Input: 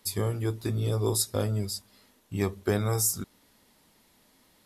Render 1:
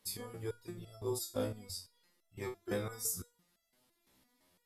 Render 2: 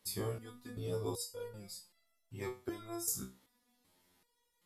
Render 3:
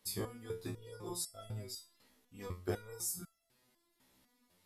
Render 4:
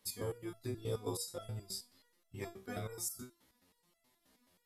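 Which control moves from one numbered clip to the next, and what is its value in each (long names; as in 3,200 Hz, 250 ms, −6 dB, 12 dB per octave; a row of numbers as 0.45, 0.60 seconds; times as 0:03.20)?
step-sequenced resonator, speed: 5.9, 2.6, 4, 9.4 Hertz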